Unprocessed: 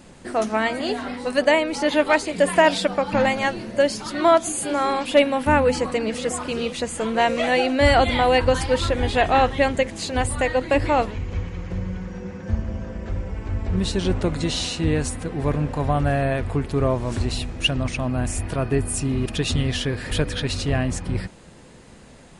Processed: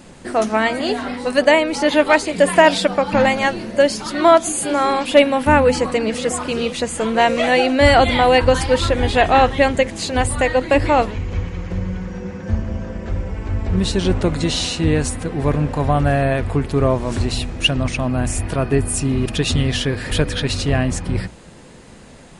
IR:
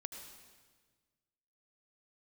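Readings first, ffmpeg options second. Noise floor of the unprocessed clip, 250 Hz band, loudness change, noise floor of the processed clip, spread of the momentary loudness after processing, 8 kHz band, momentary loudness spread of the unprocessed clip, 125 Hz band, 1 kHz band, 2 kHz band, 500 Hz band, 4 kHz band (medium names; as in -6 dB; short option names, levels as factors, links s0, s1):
-46 dBFS, +4.5 dB, +4.5 dB, -41 dBFS, 11 LU, +4.5 dB, 11 LU, +4.0 dB, +4.5 dB, +4.5 dB, +4.5 dB, +4.5 dB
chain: -af "bandreject=f=60:t=h:w=6,bandreject=f=120:t=h:w=6,volume=1.68"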